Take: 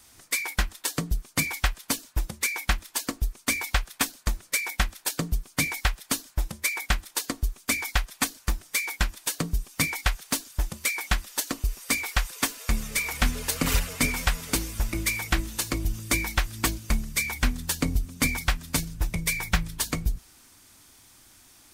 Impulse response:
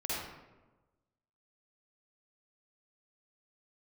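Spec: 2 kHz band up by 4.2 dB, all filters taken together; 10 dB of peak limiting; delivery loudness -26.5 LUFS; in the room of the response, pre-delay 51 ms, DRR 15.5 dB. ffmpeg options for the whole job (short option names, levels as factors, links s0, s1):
-filter_complex "[0:a]equalizer=f=2000:t=o:g=5,alimiter=limit=0.133:level=0:latency=1,asplit=2[s0][s1];[1:a]atrim=start_sample=2205,adelay=51[s2];[s1][s2]afir=irnorm=-1:irlink=0,volume=0.0944[s3];[s0][s3]amix=inputs=2:normalize=0,volume=1.41"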